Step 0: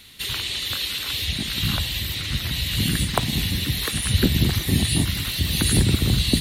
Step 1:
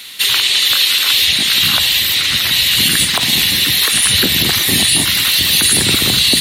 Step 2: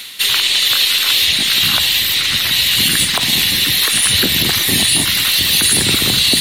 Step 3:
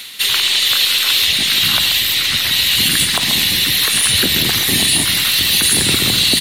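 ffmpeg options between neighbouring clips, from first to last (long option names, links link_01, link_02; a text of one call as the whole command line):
ffmpeg -i in.wav -af "highpass=frequency=1000:poles=1,acontrast=27,alimiter=level_in=11.5dB:limit=-1dB:release=50:level=0:latency=1,volume=-1dB" out.wav
ffmpeg -i in.wav -af "areverse,acompressor=mode=upward:threshold=-15dB:ratio=2.5,areverse,aeval=exprs='0.841*(cos(1*acos(clip(val(0)/0.841,-1,1)))-cos(1*PI/2))+0.075*(cos(2*acos(clip(val(0)/0.841,-1,1)))-cos(2*PI/2))+0.0188*(cos(8*acos(clip(val(0)/0.841,-1,1)))-cos(8*PI/2))':channel_layout=same,volume=-1dB" out.wav
ffmpeg -i in.wav -af "aecho=1:1:134:0.355,volume=-1dB" out.wav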